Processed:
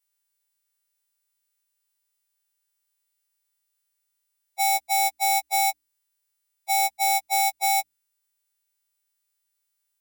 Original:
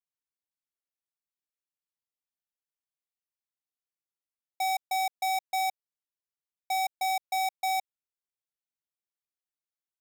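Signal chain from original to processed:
every partial snapped to a pitch grid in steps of 2 semitones
mains-hum notches 60/120/180/240/300 Hz
level +6 dB

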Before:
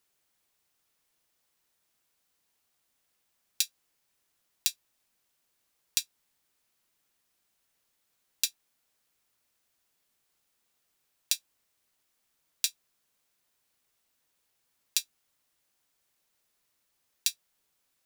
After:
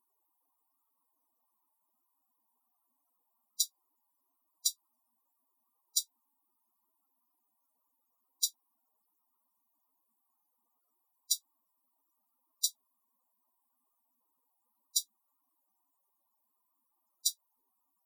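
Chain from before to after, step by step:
graphic EQ with 10 bands 125 Hz −5 dB, 250 Hz +7 dB, 1,000 Hz +10 dB, 2,000 Hz −9 dB, 16,000 Hz +6 dB
spectral peaks only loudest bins 64

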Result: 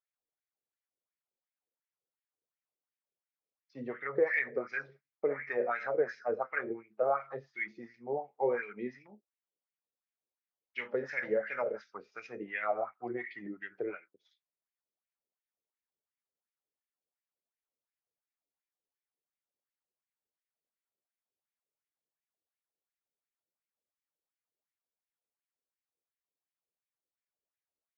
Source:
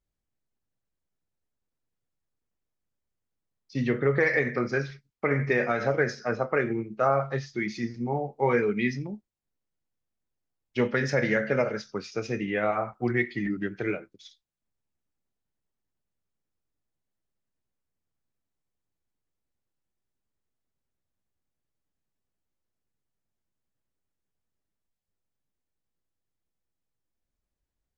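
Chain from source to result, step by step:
LFO wah 2.8 Hz 440–2,300 Hz, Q 3.2

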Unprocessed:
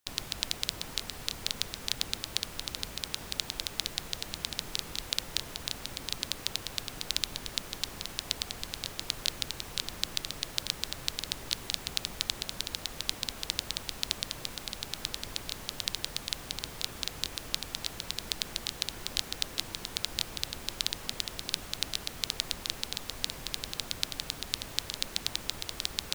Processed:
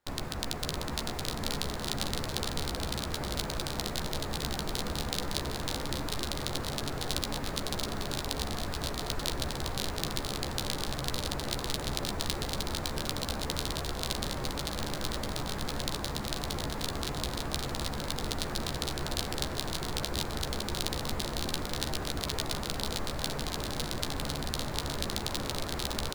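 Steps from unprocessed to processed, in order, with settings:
running median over 15 samples
double-tracking delay 14 ms −8 dB
on a send: bouncing-ball delay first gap 560 ms, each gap 0.8×, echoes 5
on the sum: level +8 dB

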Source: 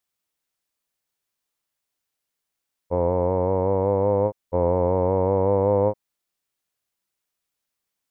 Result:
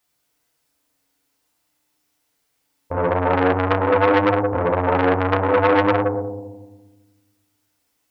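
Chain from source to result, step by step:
brickwall limiter −17 dBFS, peak gain reduction 8 dB
on a send: feedback echo with a band-pass in the loop 116 ms, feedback 45%, band-pass 530 Hz, level −6.5 dB
on the sum: feedback delay network reverb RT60 1.2 s, low-frequency decay 1.45×, high-frequency decay 0.6×, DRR −3 dB
saturating transformer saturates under 1,700 Hz
level +7.5 dB

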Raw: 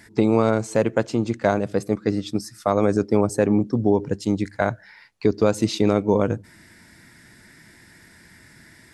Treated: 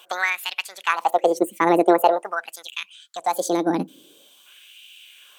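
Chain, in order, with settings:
change of speed 1.66×
gain on a spectral selection 0:02.74–0:04.46, 330–3,000 Hz −8 dB
auto-filter high-pass sine 0.46 Hz 260–2,700 Hz

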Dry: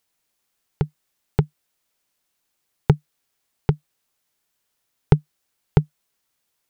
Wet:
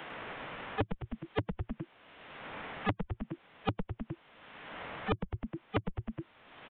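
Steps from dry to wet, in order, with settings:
running median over 9 samples
high-pass filter 180 Hz 12 dB per octave
phase-vocoder pitch shift with formants kept −6 semitones
downsampling to 8,000 Hz
echo with shifted repeats 103 ms, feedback 33%, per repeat −110 Hz, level −4 dB
downward compressor 8 to 1, threshold −39 dBFS, peak gain reduction 24.5 dB
notch filter 360 Hz, Q 12
multiband upward and downward compressor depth 100%
level +11 dB

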